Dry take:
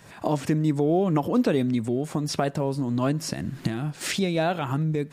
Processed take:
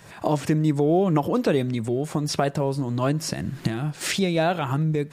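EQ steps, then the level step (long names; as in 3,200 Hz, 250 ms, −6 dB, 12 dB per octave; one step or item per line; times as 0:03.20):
parametric band 250 Hz −7 dB 0.23 octaves
+2.5 dB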